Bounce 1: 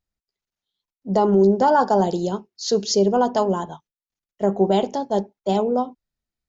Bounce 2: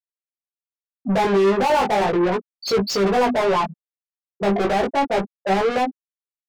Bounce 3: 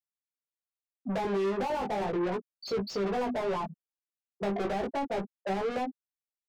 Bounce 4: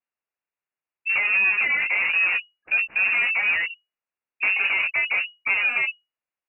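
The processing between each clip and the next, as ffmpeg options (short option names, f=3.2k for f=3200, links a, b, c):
-filter_complex "[0:a]afftfilt=real='re*gte(hypot(re,im),0.158)':imag='im*gte(hypot(re,im),0.158)':win_size=1024:overlap=0.75,asplit=2[a][b];[b]highpass=f=720:p=1,volume=35dB,asoftclip=type=tanh:threshold=-7dB[c];[a][c]amix=inputs=2:normalize=0,lowpass=f=3.1k:p=1,volume=-6dB,flanger=delay=15.5:depth=4.9:speed=0.35,volume=-3dB"
-filter_complex "[0:a]acrossover=split=360|1000|6900[a][b][c][d];[a]acompressor=threshold=-23dB:ratio=4[e];[b]acompressor=threshold=-24dB:ratio=4[f];[c]acompressor=threshold=-33dB:ratio=4[g];[d]acompressor=threshold=-53dB:ratio=4[h];[e][f][g][h]amix=inputs=4:normalize=0,volume=-8.5dB"
-af "lowpass=f=2.5k:t=q:w=0.5098,lowpass=f=2.5k:t=q:w=0.6013,lowpass=f=2.5k:t=q:w=0.9,lowpass=f=2.5k:t=q:w=2.563,afreqshift=-2900,volume=8.5dB"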